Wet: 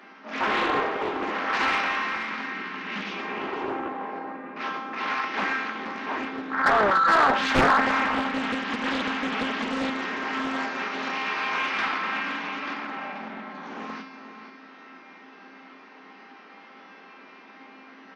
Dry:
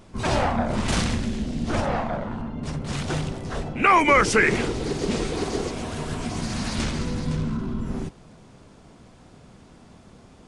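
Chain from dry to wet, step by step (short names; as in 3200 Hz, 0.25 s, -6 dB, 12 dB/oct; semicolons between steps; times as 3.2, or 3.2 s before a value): spectral repair 1.7–2.08, 420–3900 Hz both; steep high-pass 320 Hz 96 dB/oct; band shelf 2700 Hz +8.5 dB; notch 940 Hz, Q 7.3; in parallel at +2 dB: compressor, threshold -34 dBFS, peak gain reduction 23 dB; on the sum: resonator 460 Hz, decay 0.59 s, mix 90%; overdrive pedal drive 22 dB, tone 4000 Hz, clips at -10 dBFS; on a send: echo 0.277 s -11 dB; on the sum: speed mistake 78 rpm record played at 45 rpm; Doppler distortion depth 0.9 ms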